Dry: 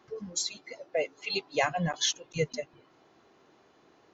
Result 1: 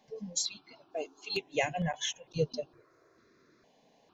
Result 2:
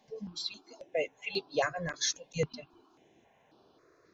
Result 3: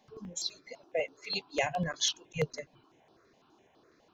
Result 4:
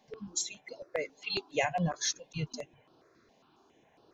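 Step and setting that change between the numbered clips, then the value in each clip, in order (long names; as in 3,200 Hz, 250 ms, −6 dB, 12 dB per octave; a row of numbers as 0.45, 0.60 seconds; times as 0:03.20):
step-sequenced phaser, speed: 2.2, 3.7, 12, 7.3 Hertz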